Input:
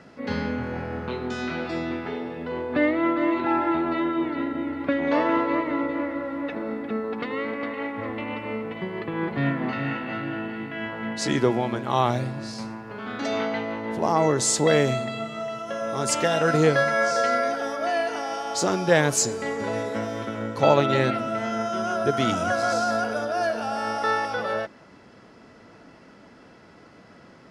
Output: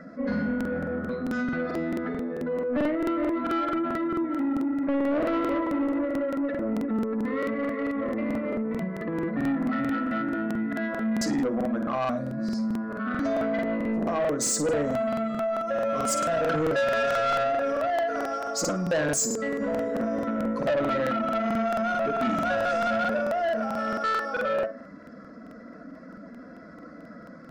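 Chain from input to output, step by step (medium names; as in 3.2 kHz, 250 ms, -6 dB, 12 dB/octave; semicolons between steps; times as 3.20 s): spectral contrast enhancement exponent 1.5; in parallel at +2.5 dB: compression, threshold -32 dBFS, peak gain reduction 17.5 dB; on the sum: static phaser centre 580 Hz, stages 8; on a send: flutter echo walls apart 9.3 m, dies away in 0.3 s; on the sum: saturation -21 dBFS, distortion -12 dB; crackling interface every 0.22 s, samples 2048, repeat, from 0.56 s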